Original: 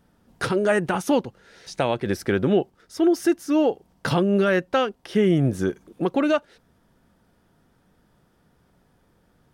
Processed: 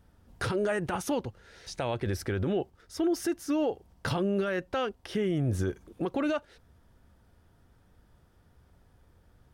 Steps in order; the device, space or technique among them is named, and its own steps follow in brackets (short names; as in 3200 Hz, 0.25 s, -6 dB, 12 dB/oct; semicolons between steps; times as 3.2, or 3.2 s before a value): car stereo with a boomy subwoofer (resonant low shelf 120 Hz +8.5 dB, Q 1.5; limiter -17.5 dBFS, peak gain reduction 8 dB); gain -3 dB